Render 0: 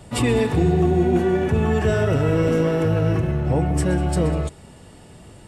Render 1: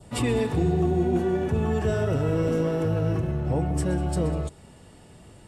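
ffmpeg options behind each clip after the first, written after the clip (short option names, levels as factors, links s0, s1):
-af "adynamicequalizer=threshold=0.00708:dfrequency=2100:dqfactor=1.3:tfrequency=2100:tqfactor=1.3:attack=5:release=100:ratio=0.375:range=2.5:mode=cutabove:tftype=bell,volume=0.562"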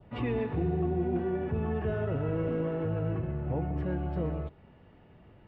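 -af "lowpass=f=2700:w=0.5412,lowpass=f=2700:w=1.3066,volume=0.473"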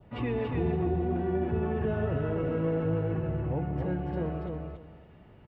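-af "aecho=1:1:283|566|849:0.631|0.133|0.0278"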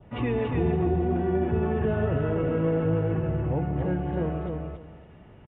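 -af "aresample=8000,aresample=44100,volume=1.58"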